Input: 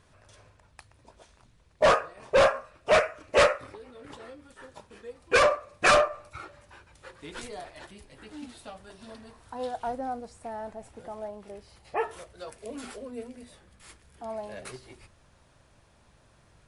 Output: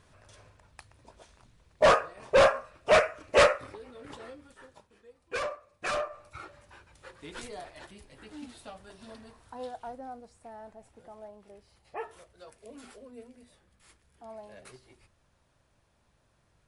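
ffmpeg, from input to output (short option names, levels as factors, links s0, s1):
-af "volume=3.35,afade=t=out:st=4.28:d=0.63:silence=0.237137,afade=t=in:st=5.92:d=0.51:silence=0.298538,afade=t=out:st=9.23:d=0.66:silence=0.446684"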